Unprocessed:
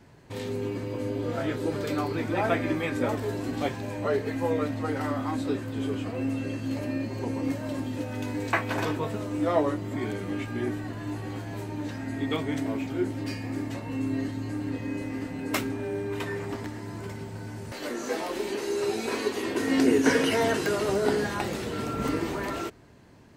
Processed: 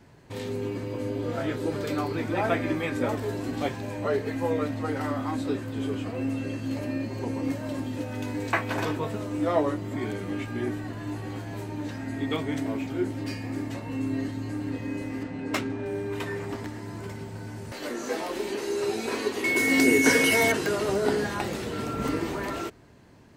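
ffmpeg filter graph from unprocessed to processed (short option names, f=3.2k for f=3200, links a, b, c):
-filter_complex "[0:a]asettb=1/sr,asplit=3[a][b][c];[a]atrim=end=15.234[d];[b]atrim=start=15.23:end=15.86,asetpts=PTS-STARTPTS,afade=t=in:d=0.004:c=qsin,afade=t=out:st=0.626:d=0.004:c=qsin,highpass=52,adynamicsmooth=sensitivity=6.5:basefreq=5.1k[e];[c]atrim=start=15.856[f];[d][e]acrossfade=d=0.004:c1=hsin:c2=qsin[g];[g][f]acrossfade=d=0.004:c1=qsin:c2=hsin,asettb=1/sr,asplit=3[h][i][j];[h]atrim=end=19.444[k];[i]atrim=start=19.44:end=20.52,asetpts=PTS-STARTPTS,afade=t=in:d=0.004:c=qsin,afade=t=out:st=1.076:d=0.004:c=qsin,aemphasis=mode=production:type=50kf,aeval=exprs='val(0)+0.0708*sin(2*PI*2200*n/s)':c=same[l];[j]atrim=start=20.516[m];[k][l]acrossfade=d=0.004:c1=hsin:c2=qsin[n];[n][m]acrossfade=d=0.004:c1=qsin:c2=hsin"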